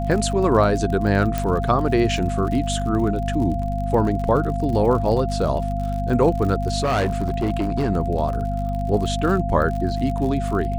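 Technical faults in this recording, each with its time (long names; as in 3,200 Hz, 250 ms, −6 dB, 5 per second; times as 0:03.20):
surface crackle 55 per second −28 dBFS
mains hum 50 Hz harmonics 5 −25 dBFS
whistle 690 Hz −27 dBFS
0:01.38: click
0:06.80–0:07.91: clipping −16.5 dBFS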